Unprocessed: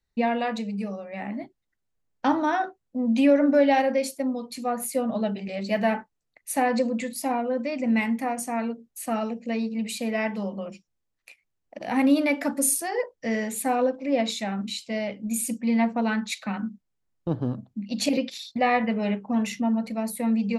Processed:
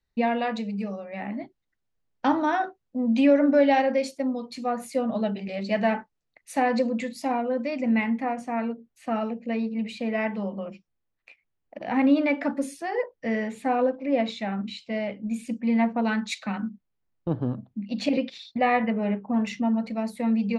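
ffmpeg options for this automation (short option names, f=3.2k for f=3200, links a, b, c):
-af "asetnsamples=n=441:p=0,asendcmd='7.89 lowpass f 3000;16.05 lowpass f 7600;16.69 lowpass f 3300;18.9 lowpass f 1900;19.47 lowpass f 4800',lowpass=5.5k"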